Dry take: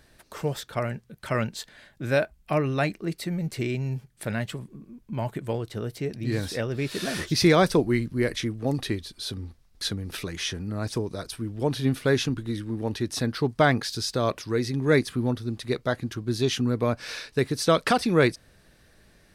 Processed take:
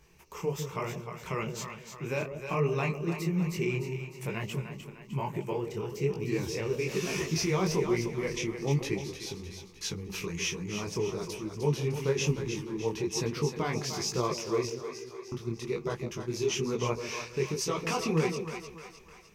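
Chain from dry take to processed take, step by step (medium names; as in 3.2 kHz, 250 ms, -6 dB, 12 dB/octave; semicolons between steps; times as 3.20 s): rippled EQ curve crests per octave 0.76, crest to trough 13 dB; peak limiter -16 dBFS, peak gain reduction 12 dB; 14.67–15.32 s: inharmonic resonator 390 Hz, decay 0.43 s, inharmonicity 0.002; two-band feedback delay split 690 Hz, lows 152 ms, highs 304 ms, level -8 dB; detune thickener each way 39 cents; trim -1 dB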